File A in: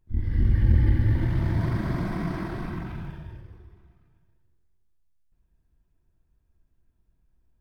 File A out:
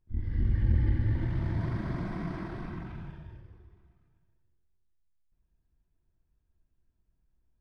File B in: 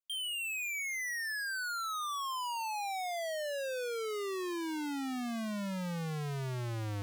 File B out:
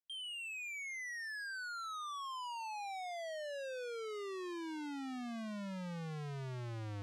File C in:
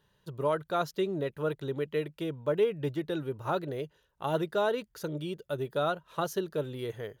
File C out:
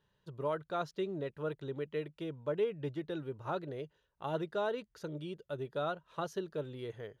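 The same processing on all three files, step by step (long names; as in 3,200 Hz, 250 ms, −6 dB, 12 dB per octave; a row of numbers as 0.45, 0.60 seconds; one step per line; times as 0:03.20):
high-frequency loss of the air 58 metres
level −6 dB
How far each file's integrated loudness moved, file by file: −6.0, −6.5, −6.0 LU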